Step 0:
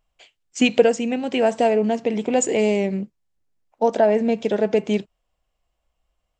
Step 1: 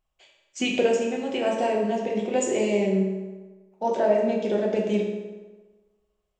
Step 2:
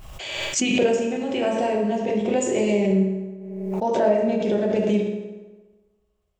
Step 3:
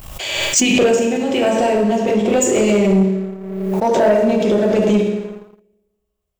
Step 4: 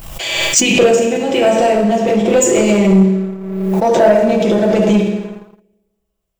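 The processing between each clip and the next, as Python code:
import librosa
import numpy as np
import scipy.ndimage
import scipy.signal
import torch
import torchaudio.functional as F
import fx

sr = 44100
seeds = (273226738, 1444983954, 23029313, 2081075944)

y1 = fx.rev_fdn(x, sr, rt60_s=1.3, lf_ratio=0.9, hf_ratio=0.7, size_ms=16.0, drr_db=-2.5)
y1 = F.gain(torch.from_numpy(y1), -8.0).numpy()
y2 = fx.peak_eq(y1, sr, hz=89.0, db=9.0, octaves=2.0)
y2 = fx.pre_swell(y2, sr, db_per_s=35.0)
y3 = fx.high_shelf(y2, sr, hz=8200.0, db=11.5)
y3 = fx.leveller(y3, sr, passes=2)
y4 = y3 + 0.42 * np.pad(y3, (int(6.0 * sr / 1000.0), 0))[:len(y3)]
y4 = F.gain(torch.from_numpy(y4), 2.5).numpy()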